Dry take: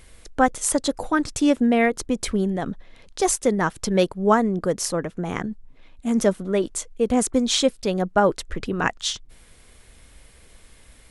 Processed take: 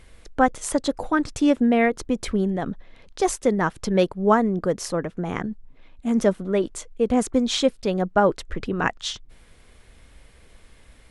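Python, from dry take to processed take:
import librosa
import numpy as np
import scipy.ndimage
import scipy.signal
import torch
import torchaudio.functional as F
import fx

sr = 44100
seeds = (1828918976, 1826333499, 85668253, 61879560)

y = fx.high_shelf(x, sr, hz=5800.0, db=-10.5)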